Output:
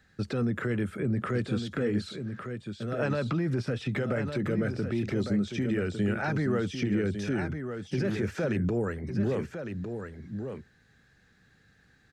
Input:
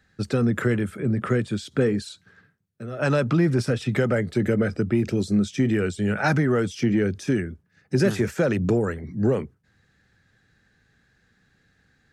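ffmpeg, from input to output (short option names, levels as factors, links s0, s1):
-filter_complex "[0:a]acrossover=split=4800[s0][s1];[s1]acompressor=threshold=0.002:ratio=4:attack=1:release=60[s2];[s0][s2]amix=inputs=2:normalize=0,alimiter=limit=0.0891:level=0:latency=1:release=184,aecho=1:1:1155:0.422"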